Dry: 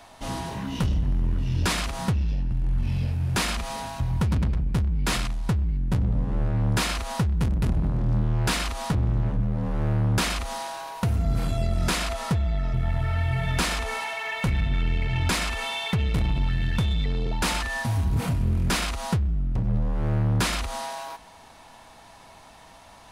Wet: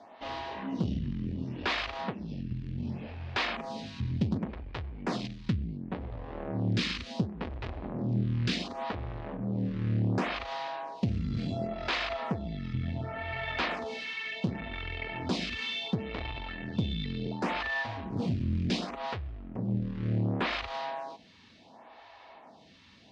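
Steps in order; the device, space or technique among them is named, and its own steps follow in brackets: vibe pedal into a guitar amplifier (lamp-driven phase shifter 0.69 Hz; valve stage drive 19 dB, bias 0.45; cabinet simulation 110–4600 Hz, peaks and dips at 140 Hz -5 dB, 230 Hz +3 dB, 960 Hz -3 dB, 1.4 kHz -5 dB); trim +2 dB

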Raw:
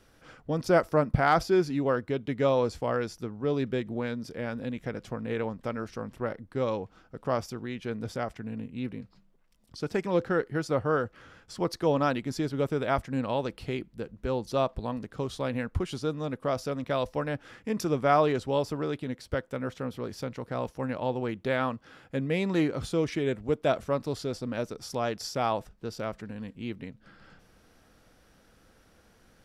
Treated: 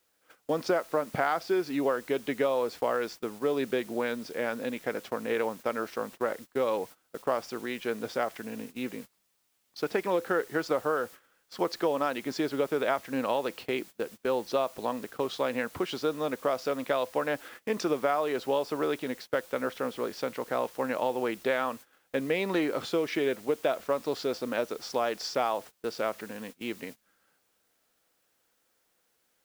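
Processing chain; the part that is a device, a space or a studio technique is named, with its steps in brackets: baby monitor (band-pass 360–4500 Hz; compression 12:1, threshold -29 dBFS, peak gain reduction 12.5 dB; white noise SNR 22 dB; gate -48 dBFS, range -21 dB); trim +6 dB

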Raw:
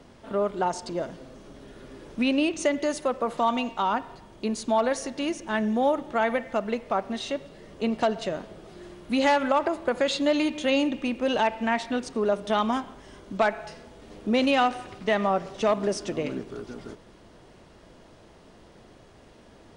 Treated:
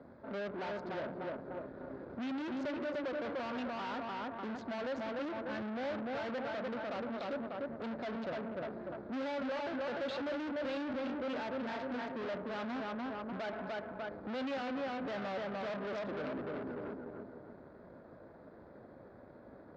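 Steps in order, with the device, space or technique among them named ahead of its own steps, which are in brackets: local Wiener filter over 15 samples; analogue delay pedal into a guitar amplifier (bucket-brigade echo 297 ms, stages 4096, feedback 41%, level -5.5 dB; valve stage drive 39 dB, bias 0.7; cabinet simulation 81–4600 Hz, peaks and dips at 260 Hz +4 dB, 560 Hz +6 dB, 1.5 kHz +6 dB); trim -1 dB

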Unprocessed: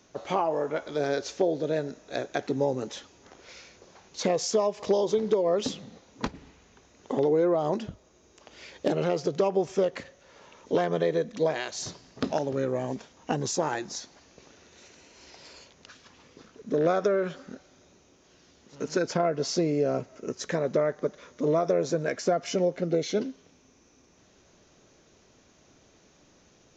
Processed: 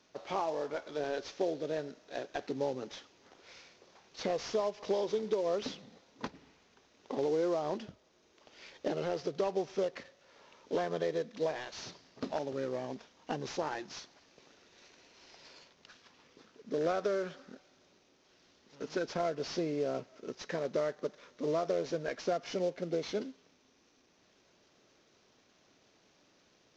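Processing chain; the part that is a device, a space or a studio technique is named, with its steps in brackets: early wireless headset (high-pass 210 Hz 6 dB/octave; CVSD coder 32 kbps); trim -6.5 dB

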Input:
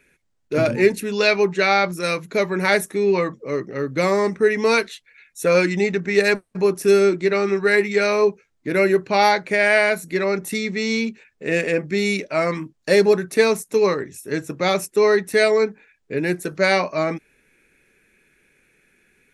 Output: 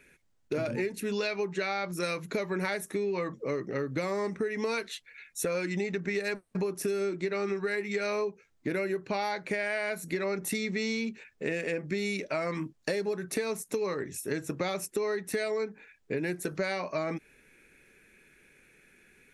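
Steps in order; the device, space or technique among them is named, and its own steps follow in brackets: serial compression, peaks first (compression, threshold -24 dBFS, peak gain reduction 13.5 dB; compression 2:1, threshold -31 dBFS, peak gain reduction 6 dB)

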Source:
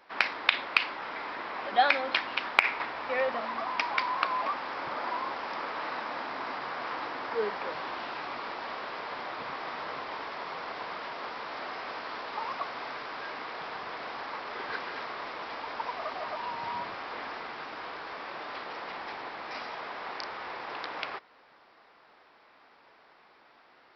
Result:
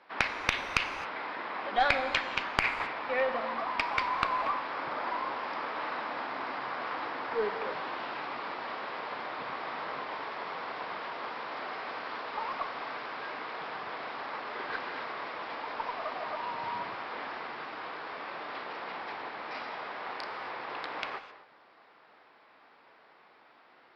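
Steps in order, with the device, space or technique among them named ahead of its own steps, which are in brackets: valve radio (band-pass 81–4300 Hz; valve stage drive 10 dB, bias 0.6; transformer saturation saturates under 570 Hz); gated-style reverb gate 290 ms flat, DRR 10.5 dB; trim +2.5 dB

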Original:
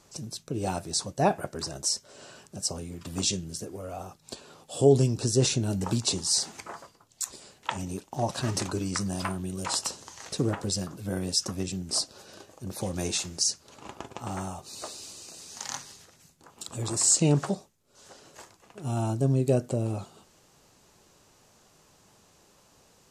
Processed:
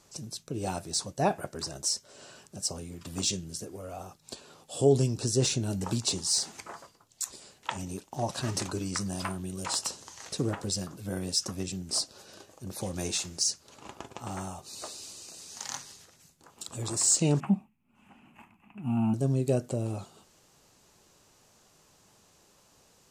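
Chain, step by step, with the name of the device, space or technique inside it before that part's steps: exciter from parts (in parallel at -9 dB: high-pass 3.2 kHz 6 dB/octave + saturation -27.5 dBFS, distortion -8 dB); 17.40–19.14 s: on the sum: FFT filter 140 Hz 0 dB, 220 Hz +13 dB, 490 Hz -19 dB, 820 Hz +1 dB, 1.7 kHz -7 dB, 2.6 kHz +6 dB, 3.9 kHz -26 dB, 5.5 kHz -29 dB, 13 kHz -11 dB; trim -3 dB

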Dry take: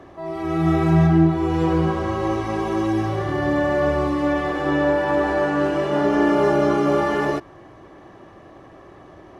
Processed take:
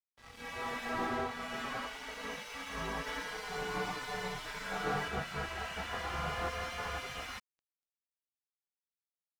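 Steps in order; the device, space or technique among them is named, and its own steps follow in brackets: spectral gate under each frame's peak -20 dB weak; early transistor amplifier (crossover distortion -49.5 dBFS; slew-rate limiter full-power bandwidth 25 Hz); 3.06–5.08 s: comb 6.7 ms, depth 95%

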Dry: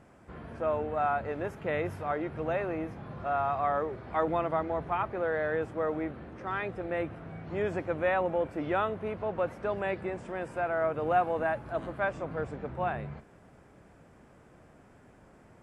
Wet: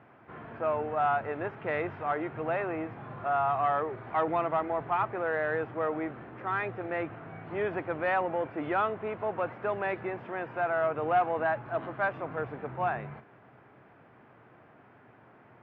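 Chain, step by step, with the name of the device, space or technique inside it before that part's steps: overdrive pedal into a guitar cabinet (overdrive pedal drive 11 dB, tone 1.8 kHz, clips at -14.5 dBFS; cabinet simulation 110–3400 Hz, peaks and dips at 120 Hz +10 dB, 180 Hz -3 dB, 540 Hz -5 dB)

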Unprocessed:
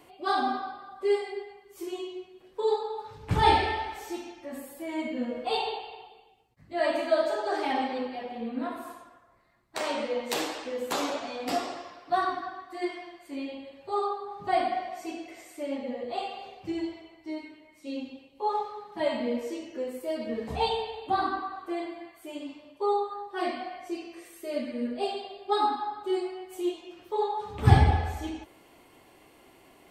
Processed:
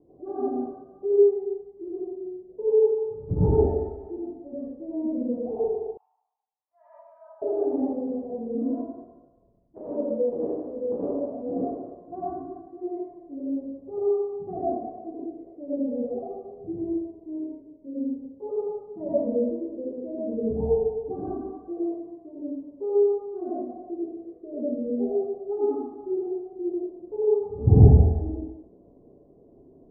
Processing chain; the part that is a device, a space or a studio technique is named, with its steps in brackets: next room (low-pass 480 Hz 24 dB/octave; reverberation RT60 0.45 s, pre-delay 80 ms, DRR -7.5 dB); 5.97–7.42 s: elliptic high-pass 960 Hz, stop band 60 dB

